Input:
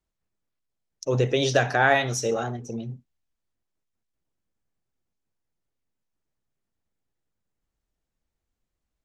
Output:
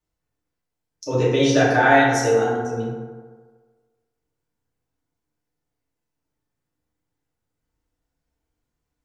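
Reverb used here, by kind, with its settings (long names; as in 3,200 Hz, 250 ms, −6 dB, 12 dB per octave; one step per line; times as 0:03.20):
feedback delay network reverb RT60 1.5 s, low-frequency decay 0.8×, high-frequency decay 0.4×, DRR −7 dB
level −3 dB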